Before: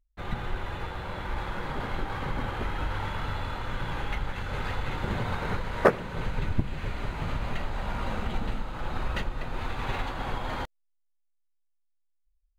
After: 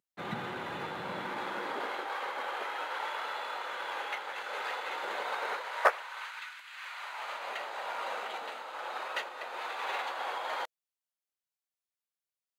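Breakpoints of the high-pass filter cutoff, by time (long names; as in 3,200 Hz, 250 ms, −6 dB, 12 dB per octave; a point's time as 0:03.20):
high-pass filter 24 dB per octave
0:01.14 160 Hz
0:02.14 480 Hz
0:05.50 480 Hz
0:06.60 1,400 Hz
0:07.50 500 Hz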